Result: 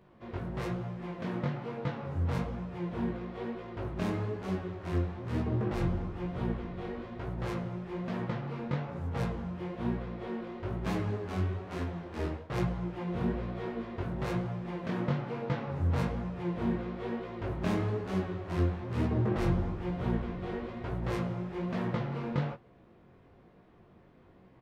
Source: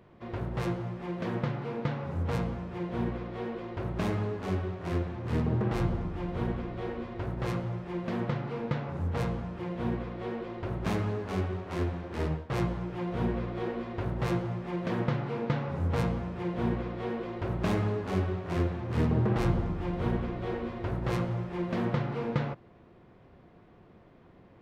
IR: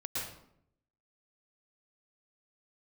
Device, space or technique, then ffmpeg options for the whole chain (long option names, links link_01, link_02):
double-tracked vocal: -filter_complex "[0:a]asplit=2[link_01][link_02];[link_02]adelay=22,volume=-12dB[link_03];[link_01][link_03]amix=inputs=2:normalize=0,flanger=delay=15.5:depth=7.3:speed=1.1"